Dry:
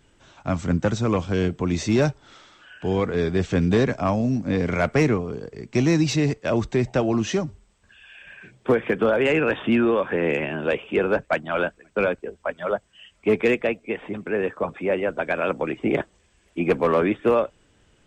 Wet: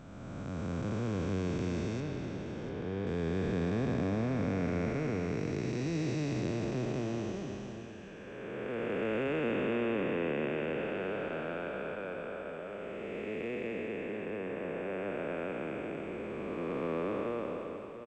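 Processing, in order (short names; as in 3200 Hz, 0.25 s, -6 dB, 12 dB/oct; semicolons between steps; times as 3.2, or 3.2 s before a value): time blur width 0.888 s; 2–3.07 air absorption 95 m; echo 0.692 s -11.5 dB; gain -7.5 dB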